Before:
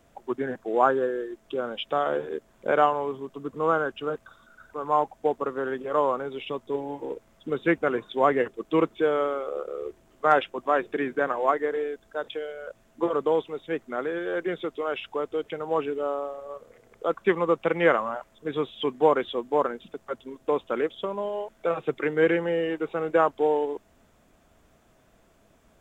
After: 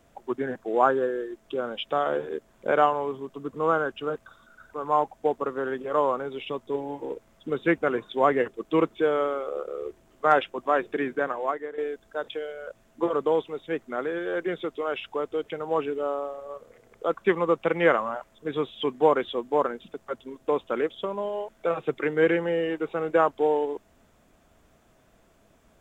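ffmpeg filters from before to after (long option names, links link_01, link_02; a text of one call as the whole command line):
ffmpeg -i in.wav -filter_complex "[0:a]asplit=2[link_01][link_02];[link_01]atrim=end=11.78,asetpts=PTS-STARTPTS,afade=type=out:start_time=11.07:duration=0.71:silence=0.266073[link_03];[link_02]atrim=start=11.78,asetpts=PTS-STARTPTS,afade=type=in:duration=0.004:curve=hsin:silence=0.266073[link_04];[link_03][link_04]concat=n=2:v=0:a=1" out.wav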